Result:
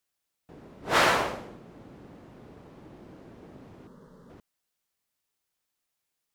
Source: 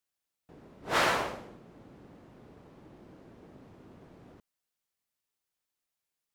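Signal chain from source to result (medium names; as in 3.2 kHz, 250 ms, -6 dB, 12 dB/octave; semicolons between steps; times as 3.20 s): 3.87–4.30 s: static phaser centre 480 Hz, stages 8; trim +4.5 dB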